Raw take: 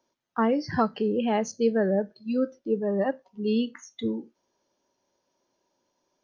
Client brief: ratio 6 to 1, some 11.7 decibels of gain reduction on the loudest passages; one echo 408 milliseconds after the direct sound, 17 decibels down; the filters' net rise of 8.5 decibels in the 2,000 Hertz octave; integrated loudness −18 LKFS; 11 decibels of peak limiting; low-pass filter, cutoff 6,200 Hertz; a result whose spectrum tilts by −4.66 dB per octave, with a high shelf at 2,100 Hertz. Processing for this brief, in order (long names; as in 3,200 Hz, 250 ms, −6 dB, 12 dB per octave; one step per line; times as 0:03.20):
low-pass filter 6,200 Hz
parametric band 2,000 Hz +8 dB
high-shelf EQ 2,100 Hz +5 dB
downward compressor 6 to 1, threshold −30 dBFS
brickwall limiter −27.5 dBFS
single-tap delay 408 ms −17 dB
level +19.5 dB